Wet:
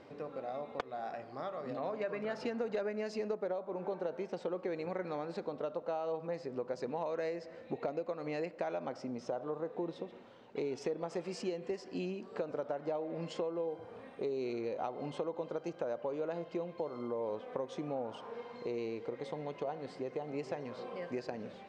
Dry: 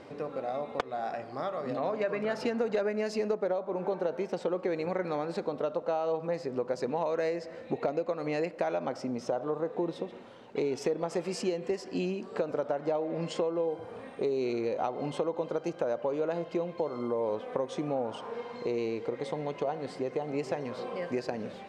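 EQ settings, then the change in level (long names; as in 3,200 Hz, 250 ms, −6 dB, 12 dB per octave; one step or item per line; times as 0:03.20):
low-pass filter 7,100 Hz 12 dB per octave
−6.5 dB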